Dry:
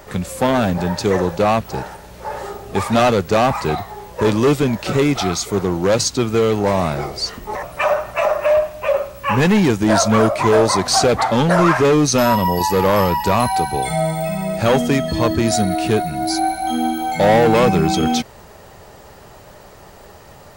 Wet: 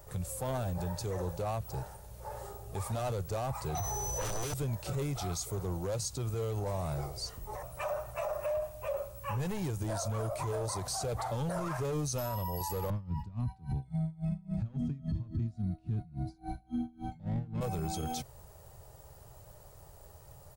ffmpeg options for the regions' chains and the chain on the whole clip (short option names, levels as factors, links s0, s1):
-filter_complex "[0:a]asettb=1/sr,asplit=3[s0][s1][s2];[s0]atrim=end=3.754[s3];[s1]atrim=start=3.75:end=4.54,asetpts=PTS-STARTPTS,afade=t=in:d=0.004:c=qsin,afade=t=out:st=0.786:d=0.004:c=qsin,aeval=exprs='0.422*sin(PI/2*3.98*val(0)/0.422)':c=same,aeval=exprs='val(0)+0.126*sin(2*PI*6000*n/s)':c=same[s4];[s2]atrim=start=4.536[s5];[s3][s4]acrossfade=d=0.004:c1=hsin:c2=qsin[s6];[s6][s5]acrossfade=d=0.004:c1=qsin:c2=hsin,asettb=1/sr,asplit=3[s7][s8][s9];[s7]atrim=end=12.904[s10];[s8]atrim=start=12.9:end=17.61,asetpts=PTS-STARTPTS,afade=t=in:d=0.004:c=qsin,afade=t=out:st=4.706:d=0.004:c=qsin,lowpass=3600,lowshelf=f=340:t=q:w=3:g=13,aeval=exprs='val(0)*pow(10,-32*(0.5-0.5*cos(2*PI*3.6*n/s))/20)':c=same[s11];[s9]atrim=start=17.606[s12];[s10][s11]acrossfade=d=0.004:c1=hsin:c2=qsin[s13];[s13][s12]acrossfade=d=0.004:c1=qsin:c2=hsin,firequalizer=gain_entry='entry(130,0);entry(210,-17);entry(520,-8);entry(1900,-16);entry(9400,0)':delay=0.05:min_phase=1,alimiter=limit=0.0944:level=0:latency=1:release=46,volume=0.473"